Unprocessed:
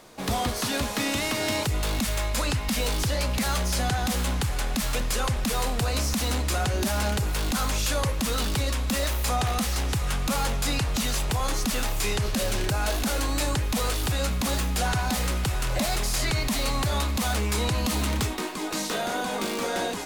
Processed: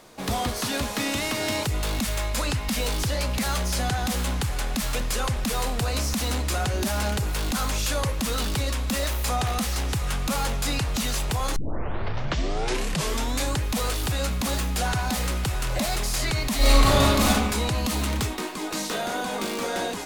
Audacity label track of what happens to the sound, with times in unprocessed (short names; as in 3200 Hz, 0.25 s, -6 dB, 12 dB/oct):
11.560000	11.560000	tape start 1.97 s
16.570000	17.280000	reverb throw, RT60 1.2 s, DRR -7.5 dB